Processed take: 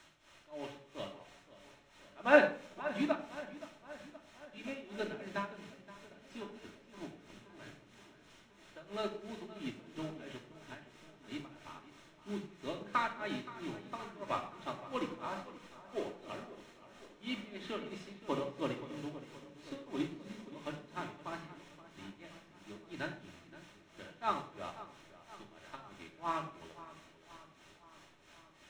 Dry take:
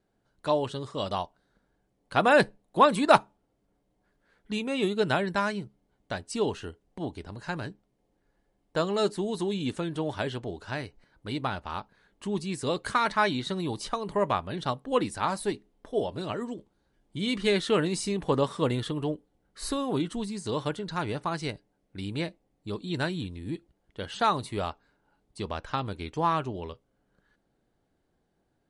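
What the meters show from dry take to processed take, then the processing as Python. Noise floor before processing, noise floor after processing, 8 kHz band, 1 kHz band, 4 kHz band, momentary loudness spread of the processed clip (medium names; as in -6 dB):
-75 dBFS, -63 dBFS, -17.0 dB, -12.5 dB, -14.0 dB, 20 LU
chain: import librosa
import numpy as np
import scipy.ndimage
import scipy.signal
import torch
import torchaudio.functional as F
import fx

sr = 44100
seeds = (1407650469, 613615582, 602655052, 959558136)

y = fx.bandpass_edges(x, sr, low_hz=170.0, high_hz=6900.0)
y = fx.quant_dither(y, sr, seeds[0], bits=6, dither='triangular')
y = fx.dynamic_eq(y, sr, hz=2300.0, q=1.5, threshold_db=-44.0, ratio=4.0, max_db=5)
y = y * (1.0 - 0.88 / 2.0 + 0.88 / 2.0 * np.cos(2.0 * np.pi * 3.0 * (np.arange(len(y)) / sr)))
y = fx.air_absorb(y, sr, metres=130.0)
y = fx.notch(y, sr, hz=4700.0, q=5.7)
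y = fx.echo_filtered(y, sr, ms=523, feedback_pct=71, hz=3600.0, wet_db=-11)
y = fx.room_shoebox(y, sr, seeds[1], volume_m3=2000.0, walls='furnished', distance_m=2.7)
y = fx.upward_expand(y, sr, threshold_db=-39.0, expansion=1.5)
y = F.gain(torch.from_numpy(y), -5.5).numpy()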